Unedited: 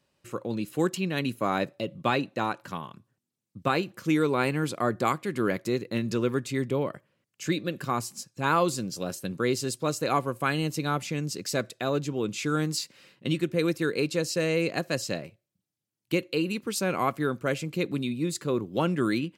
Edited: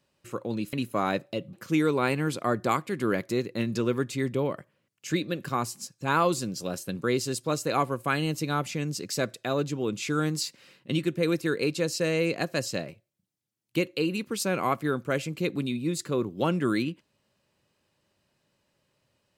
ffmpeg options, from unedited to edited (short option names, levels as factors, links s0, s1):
-filter_complex "[0:a]asplit=3[s0][s1][s2];[s0]atrim=end=0.732[s3];[s1]atrim=start=1.198:end=2.002[s4];[s2]atrim=start=3.888[s5];[s3][s4]acrossfade=d=0.004:c1=hsin:c2=hsin[s6];[s6][s5]acrossfade=d=0.004:c1=hsin:c2=hsin"